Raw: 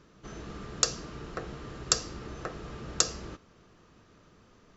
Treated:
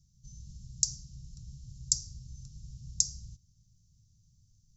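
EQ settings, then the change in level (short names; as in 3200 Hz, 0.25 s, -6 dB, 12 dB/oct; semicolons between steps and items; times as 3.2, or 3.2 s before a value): elliptic band-stop 130–5700 Hz, stop band 50 dB; 0.0 dB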